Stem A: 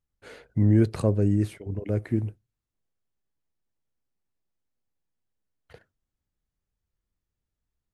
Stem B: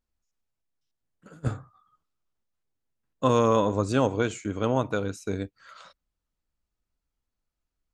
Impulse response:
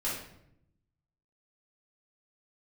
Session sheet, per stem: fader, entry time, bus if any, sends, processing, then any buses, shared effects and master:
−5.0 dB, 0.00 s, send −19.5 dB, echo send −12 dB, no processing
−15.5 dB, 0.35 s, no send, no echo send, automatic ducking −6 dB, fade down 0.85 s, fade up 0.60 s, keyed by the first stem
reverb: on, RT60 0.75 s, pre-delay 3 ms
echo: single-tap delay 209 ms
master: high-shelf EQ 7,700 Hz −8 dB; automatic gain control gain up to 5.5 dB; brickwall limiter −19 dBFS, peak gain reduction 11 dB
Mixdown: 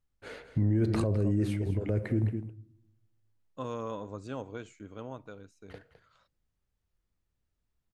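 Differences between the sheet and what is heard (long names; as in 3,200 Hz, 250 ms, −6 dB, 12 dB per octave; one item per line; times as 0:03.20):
stem A −5.0 dB → +1.5 dB
master: missing automatic gain control gain up to 5.5 dB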